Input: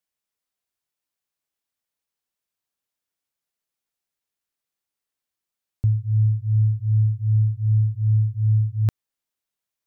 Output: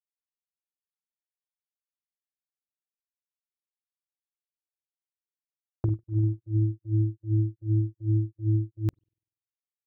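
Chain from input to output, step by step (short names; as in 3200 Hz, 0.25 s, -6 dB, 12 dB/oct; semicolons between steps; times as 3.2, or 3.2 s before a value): gate -27 dBFS, range -7 dB; notches 50/100/150/200/250/300 Hz; spring tank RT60 2.2 s, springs 49 ms, chirp 50 ms, DRR 8.5 dB; power-law curve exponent 3; gain -1 dB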